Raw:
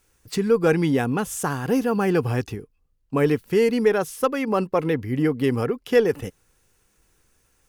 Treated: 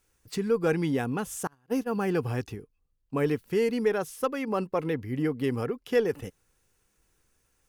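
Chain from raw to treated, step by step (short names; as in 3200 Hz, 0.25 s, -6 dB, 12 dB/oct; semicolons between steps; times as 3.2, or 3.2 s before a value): 1.47–1.91 gate -21 dBFS, range -32 dB; gain -6.5 dB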